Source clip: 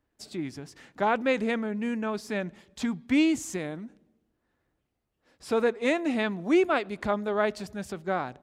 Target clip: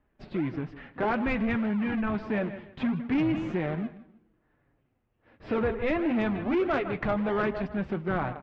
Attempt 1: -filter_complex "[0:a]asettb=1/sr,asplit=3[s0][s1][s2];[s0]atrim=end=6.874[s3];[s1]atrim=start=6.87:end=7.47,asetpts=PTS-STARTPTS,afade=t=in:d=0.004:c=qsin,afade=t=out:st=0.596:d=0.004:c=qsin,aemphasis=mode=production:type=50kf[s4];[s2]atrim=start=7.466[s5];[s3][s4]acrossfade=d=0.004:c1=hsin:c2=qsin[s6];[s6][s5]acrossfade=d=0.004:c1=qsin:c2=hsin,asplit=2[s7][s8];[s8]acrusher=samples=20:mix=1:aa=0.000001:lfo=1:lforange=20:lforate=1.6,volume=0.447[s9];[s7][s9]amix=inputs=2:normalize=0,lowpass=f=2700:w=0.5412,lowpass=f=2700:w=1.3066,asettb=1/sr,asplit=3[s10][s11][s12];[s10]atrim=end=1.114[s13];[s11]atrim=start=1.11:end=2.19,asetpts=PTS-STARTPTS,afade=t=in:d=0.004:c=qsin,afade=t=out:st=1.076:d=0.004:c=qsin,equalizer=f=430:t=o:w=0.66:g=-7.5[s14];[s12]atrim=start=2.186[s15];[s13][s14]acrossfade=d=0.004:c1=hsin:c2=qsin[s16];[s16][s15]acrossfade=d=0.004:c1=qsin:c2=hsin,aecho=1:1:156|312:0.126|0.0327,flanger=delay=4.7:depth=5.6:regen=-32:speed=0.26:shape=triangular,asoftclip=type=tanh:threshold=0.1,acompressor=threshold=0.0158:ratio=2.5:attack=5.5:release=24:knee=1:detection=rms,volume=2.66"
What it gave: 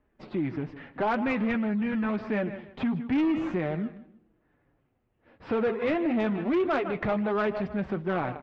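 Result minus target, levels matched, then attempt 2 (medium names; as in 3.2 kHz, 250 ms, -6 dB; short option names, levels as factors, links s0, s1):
decimation with a swept rate: distortion -22 dB
-filter_complex "[0:a]asettb=1/sr,asplit=3[s0][s1][s2];[s0]atrim=end=6.874[s3];[s1]atrim=start=6.87:end=7.47,asetpts=PTS-STARTPTS,afade=t=in:d=0.004:c=qsin,afade=t=out:st=0.596:d=0.004:c=qsin,aemphasis=mode=production:type=50kf[s4];[s2]atrim=start=7.466[s5];[s3][s4]acrossfade=d=0.004:c1=hsin:c2=qsin[s6];[s6][s5]acrossfade=d=0.004:c1=qsin:c2=hsin,asplit=2[s7][s8];[s8]acrusher=samples=67:mix=1:aa=0.000001:lfo=1:lforange=67:lforate=1.6,volume=0.447[s9];[s7][s9]amix=inputs=2:normalize=0,lowpass=f=2700:w=0.5412,lowpass=f=2700:w=1.3066,asettb=1/sr,asplit=3[s10][s11][s12];[s10]atrim=end=1.114[s13];[s11]atrim=start=1.11:end=2.19,asetpts=PTS-STARTPTS,afade=t=in:d=0.004:c=qsin,afade=t=out:st=1.076:d=0.004:c=qsin,equalizer=f=430:t=o:w=0.66:g=-7.5[s14];[s12]atrim=start=2.186[s15];[s13][s14]acrossfade=d=0.004:c1=hsin:c2=qsin[s16];[s16][s15]acrossfade=d=0.004:c1=qsin:c2=hsin,aecho=1:1:156|312:0.126|0.0327,flanger=delay=4.7:depth=5.6:regen=-32:speed=0.26:shape=triangular,asoftclip=type=tanh:threshold=0.1,acompressor=threshold=0.0158:ratio=2.5:attack=5.5:release=24:knee=1:detection=rms,volume=2.66"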